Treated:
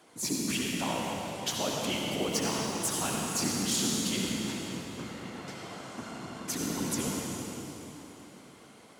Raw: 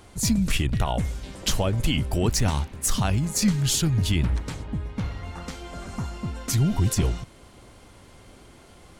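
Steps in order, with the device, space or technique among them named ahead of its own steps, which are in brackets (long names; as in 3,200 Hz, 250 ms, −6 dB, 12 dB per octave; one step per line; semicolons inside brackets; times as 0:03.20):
whispering ghost (random phases in short frames; high-pass filter 260 Hz 12 dB per octave; convolution reverb RT60 3.7 s, pre-delay 61 ms, DRR −2.5 dB)
level −7 dB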